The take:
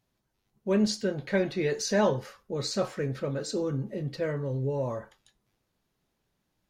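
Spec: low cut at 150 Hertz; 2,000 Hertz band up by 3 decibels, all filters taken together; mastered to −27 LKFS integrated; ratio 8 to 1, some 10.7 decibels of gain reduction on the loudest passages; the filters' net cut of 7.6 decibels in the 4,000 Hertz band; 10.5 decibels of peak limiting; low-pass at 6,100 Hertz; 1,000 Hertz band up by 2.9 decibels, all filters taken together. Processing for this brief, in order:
high-pass filter 150 Hz
low-pass filter 6,100 Hz
parametric band 1,000 Hz +3 dB
parametric band 2,000 Hz +4.5 dB
parametric band 4,000 Hz −9 dB
downward compressor 8 to 1, threshold −31 dBFS
level +13 dB
brickwall limiter −17.5 dBFS

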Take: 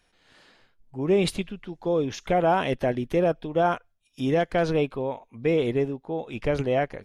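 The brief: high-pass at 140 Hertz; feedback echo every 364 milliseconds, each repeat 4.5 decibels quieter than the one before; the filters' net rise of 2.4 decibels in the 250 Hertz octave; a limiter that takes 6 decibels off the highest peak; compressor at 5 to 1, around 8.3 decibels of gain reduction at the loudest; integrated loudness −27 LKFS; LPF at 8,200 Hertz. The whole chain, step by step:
high-pass filter 140 Hz
low-pass filter 8,200 Hz
parametric band 250 Hz +4 dB
downward compressor 5 to 1, threshold −26 dBFS
brickwall limiter −21.5 dBFS
repeating echo 364 ms, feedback 60%, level −4.5 dB
level +4 dB

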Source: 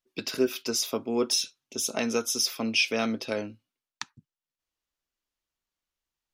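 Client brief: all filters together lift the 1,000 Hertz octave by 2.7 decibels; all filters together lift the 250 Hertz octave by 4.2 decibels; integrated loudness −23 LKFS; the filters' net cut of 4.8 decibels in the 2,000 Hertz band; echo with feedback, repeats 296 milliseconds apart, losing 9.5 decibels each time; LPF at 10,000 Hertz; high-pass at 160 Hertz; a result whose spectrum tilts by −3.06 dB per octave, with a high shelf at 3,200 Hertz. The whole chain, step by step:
high-pass filter 160 Hz
low-pass filter 10,000 Hz
parametric band 250 Hz +5.5 dB
parametric band 1,000 Hz +5.5 dB
parametric band 2,000 Hz −6 dB
high-shelf EQ 3,200 Hz −4 dB
repeating echo 296 ms, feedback 33%, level −9.5 dB
level +4.5 dB

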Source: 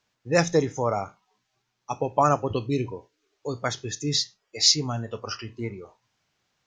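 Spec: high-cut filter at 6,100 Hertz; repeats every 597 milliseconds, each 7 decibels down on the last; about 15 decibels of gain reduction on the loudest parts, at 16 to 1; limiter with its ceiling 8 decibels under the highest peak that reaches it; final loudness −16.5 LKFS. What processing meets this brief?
low-pass filter 6,100 Hz
downward compressor 16 to 1, threshold −30 dBFS
brickwall limiter −25.5 dBFS
repeating echo 597 ms, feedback 45%, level −7 dB
level +21.5 dB

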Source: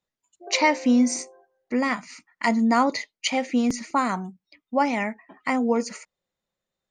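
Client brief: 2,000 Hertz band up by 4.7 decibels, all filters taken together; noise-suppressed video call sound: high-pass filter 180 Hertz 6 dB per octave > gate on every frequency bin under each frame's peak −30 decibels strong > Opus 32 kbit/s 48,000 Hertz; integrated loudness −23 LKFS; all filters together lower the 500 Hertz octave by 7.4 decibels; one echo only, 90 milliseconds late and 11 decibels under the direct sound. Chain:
high-pass filter 180 Hz 6 dB per octave
parametric band 500 Hz −8.5 dB
parametric band 2,000 Hz +5.5 dB
single-tap delay 90 ms −11 dB
gate on every frequency bin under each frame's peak −30 dB strong
level +2 dB
Opus 32 kbit/s 48,000 Hz

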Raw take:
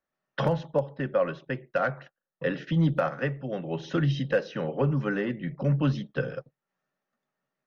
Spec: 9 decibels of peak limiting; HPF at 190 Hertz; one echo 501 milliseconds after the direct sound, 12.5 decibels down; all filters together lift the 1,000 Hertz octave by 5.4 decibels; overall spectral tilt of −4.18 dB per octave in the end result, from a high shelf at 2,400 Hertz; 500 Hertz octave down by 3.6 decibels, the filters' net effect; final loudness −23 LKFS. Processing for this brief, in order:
high-pass filter 190 Hz
parametric band 500 Hz −6.5 dB
parametric band 1,000 Hz +7.5 dB
high-shelf EQ 2,400 Hz +8.5 dB
brickwall limiter −20.5 dBFS
single-tap delay 501 ms −12.5 dB
level +9.5 dB

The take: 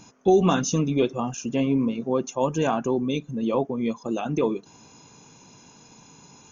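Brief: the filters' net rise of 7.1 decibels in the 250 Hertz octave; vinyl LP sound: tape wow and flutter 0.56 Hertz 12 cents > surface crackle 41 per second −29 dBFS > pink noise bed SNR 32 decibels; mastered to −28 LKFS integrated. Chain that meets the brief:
parametric band 250 Hz +8.5 dB
tape wow and flutter 0.56 Hz 12 cents
surface crackle 41 per second −29 dBFS
pink noise bed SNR 32 dB
level −8.5 dB

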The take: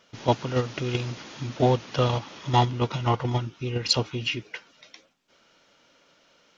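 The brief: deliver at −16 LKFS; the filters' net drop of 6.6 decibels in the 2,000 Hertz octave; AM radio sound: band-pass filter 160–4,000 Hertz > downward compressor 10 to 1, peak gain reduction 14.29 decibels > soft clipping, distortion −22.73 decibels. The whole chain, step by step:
band-pass filter 160–4,000 Hz
parametric band 2,000 Hz −9 dB
downward compressor 10 to 1, threshold −30 dBFS
soft clipping −21.5 dBFS
level +21.5 dB

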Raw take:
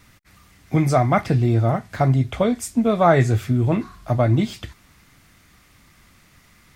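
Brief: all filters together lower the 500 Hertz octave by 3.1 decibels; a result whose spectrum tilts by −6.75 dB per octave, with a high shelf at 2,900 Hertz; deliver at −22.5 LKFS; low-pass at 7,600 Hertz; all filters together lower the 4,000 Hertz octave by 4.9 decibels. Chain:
low-pass filter 7,600 Hz
parametric band 500 Hz −4 dB
high-shelf EQ 2,900 Hz −3 dB
parametric band 4,000 Hz −3.5 dB
level −1.5 dB

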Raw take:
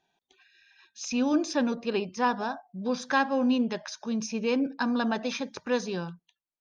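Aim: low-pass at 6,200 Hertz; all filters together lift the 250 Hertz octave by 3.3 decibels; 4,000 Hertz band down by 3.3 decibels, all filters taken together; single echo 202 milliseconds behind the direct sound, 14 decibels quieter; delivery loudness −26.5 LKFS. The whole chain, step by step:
low-pass filter 6,200 Hz
parametric band 250 Hz +3.5 dB
parametric band 4,000 Hz −3.5 dB
single-tap delay 202 ms −14 dB

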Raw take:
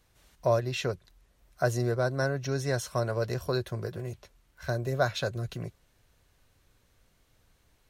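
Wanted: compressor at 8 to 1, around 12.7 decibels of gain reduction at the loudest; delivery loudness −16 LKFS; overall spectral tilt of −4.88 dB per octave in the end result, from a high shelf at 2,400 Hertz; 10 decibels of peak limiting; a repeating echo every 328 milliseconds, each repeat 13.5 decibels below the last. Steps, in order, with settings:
high-shelf EQ 2,400 Hz +3 dB
downward compressor 8 to 1, threshold −33 dBFS
brickwall limiter −30.5 dBFS
repeating echo 328 ms, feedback 21%, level −13.5 dB
level +25.5 dB

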